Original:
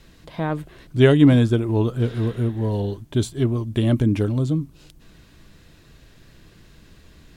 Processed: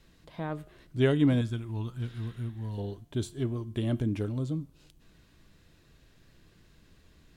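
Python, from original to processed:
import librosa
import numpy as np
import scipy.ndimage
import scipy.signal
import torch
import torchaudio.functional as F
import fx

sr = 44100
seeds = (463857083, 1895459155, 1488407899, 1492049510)

y = fx.peak_eq(x, sr, hz=470.0, db=-14.5, octaves=1.4, at=(1.41, 2.78))
y = fx.comb_fb(y, sr, f0_hz=88.0, decay_s=0.6, harmonics='all', damping=0.0, mix_pct=40)
y = y * 10.0 ** (-6.5 / 20.0)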